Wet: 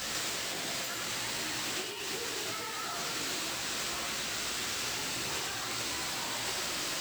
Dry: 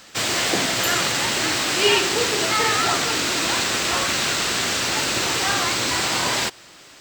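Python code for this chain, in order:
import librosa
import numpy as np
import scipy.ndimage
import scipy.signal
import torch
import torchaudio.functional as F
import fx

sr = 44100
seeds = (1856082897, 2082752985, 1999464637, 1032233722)

p1 = fx.high_shelf(x, sr, hz=3600.0, db=3.5)
p2 = fx.over_compress(p1, sr, threshold_db=-33.0, ratio=-1.0)
p3 = fx.chorus_voices(p2, sr, voices=2, hz=1.4, base_ms=16, depth_ms=3.1, mix_pct=50)
p4 = fx.quant_companded(p3, sr, bits=4)
p5 = p4 + fx.echo_single(p4, sr, ms=98, db=-4.5, dry=0)
y = F.gain(torch.from_numpy(p5), -1.5).numpy()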